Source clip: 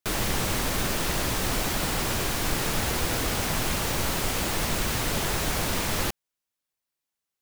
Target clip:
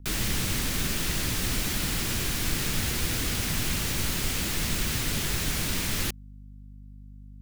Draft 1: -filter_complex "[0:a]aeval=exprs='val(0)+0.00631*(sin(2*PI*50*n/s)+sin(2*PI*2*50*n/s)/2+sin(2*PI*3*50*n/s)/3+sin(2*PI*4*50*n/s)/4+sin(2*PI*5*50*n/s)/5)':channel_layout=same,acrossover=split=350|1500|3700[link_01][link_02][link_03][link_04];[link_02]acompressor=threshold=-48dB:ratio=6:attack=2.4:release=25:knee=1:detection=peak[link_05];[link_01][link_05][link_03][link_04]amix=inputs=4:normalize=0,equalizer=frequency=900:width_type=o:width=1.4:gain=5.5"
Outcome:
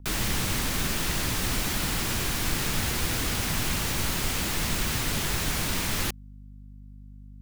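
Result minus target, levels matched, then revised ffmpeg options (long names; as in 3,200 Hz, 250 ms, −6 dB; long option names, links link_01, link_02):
1,000 Hz band +4.0 dB
-filter_complex "[0:a]aeval=exprs='val(0)+0.00631*(sin(2*PI*50*n/s)+sin(2*PI*2*50*n/s)/2+sin(2*PI*3*50*n/s)/3+sin(2*PI*4*50*n/s)/4+sin(2*PI*5*50*n/s)/5)':channel_layout=same,acrossover=split=350|1500|3700[link_01][link_02][link_03][link_04];[link_02]acompressor=threshold=-48dB:ratio=6:attack=2.4:release=25:knee=1:detection=peak[link_05];[link_01][link_05][link_03][link_04]amix=inputs=4:normalize=0"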